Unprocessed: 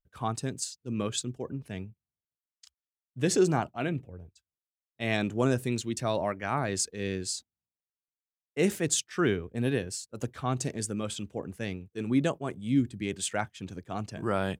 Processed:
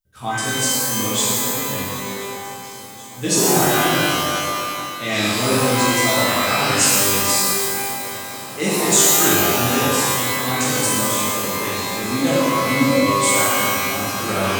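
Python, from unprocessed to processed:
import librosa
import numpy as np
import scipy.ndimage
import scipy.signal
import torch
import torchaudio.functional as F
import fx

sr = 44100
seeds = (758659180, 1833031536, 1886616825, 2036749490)

y = fx.high_shelf(x, sr, hz=3500.0, db=11.5)
y = fx.echo_swing(y, sr, ms=1039, ratio=3, feedback_pct=76, wet_db=-20.0)
y = fx.rev_shimmer(y, sr, seeds[0], rt60_s=1.9, semitones=12, shimmer_db=-2, drr_db=-10.0)
y = F.gain(torch.from_numpy(y), -3.0).numpy()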